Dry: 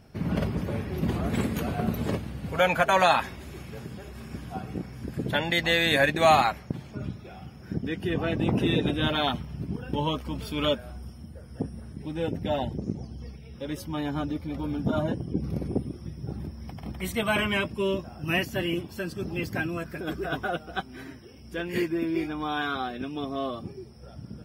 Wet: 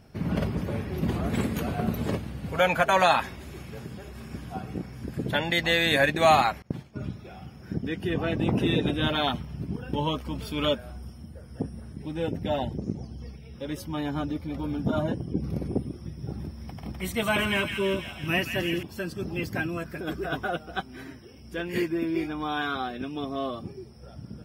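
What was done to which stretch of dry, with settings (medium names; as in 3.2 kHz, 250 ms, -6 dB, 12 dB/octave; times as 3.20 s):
6.62–7.07 s: expander -38 dBFS
16.02–18.83 s: feedback echo behind a high-pass 166 ms, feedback 66%, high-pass 1.8 kHz, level -5.5 dB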